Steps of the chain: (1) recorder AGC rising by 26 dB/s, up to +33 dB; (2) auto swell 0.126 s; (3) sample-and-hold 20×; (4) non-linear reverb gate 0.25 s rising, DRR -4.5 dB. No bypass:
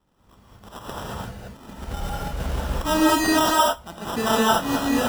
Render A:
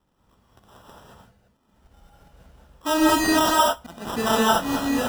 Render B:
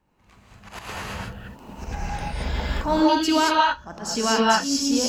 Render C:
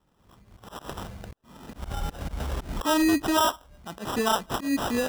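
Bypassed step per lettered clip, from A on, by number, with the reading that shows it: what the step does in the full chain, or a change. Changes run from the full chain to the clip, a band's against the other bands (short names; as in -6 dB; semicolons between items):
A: 1, momentary loudness spread change -5 LU; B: 3, crest factor change -1.5 dB; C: 4, momentary loudness spread change +3 LU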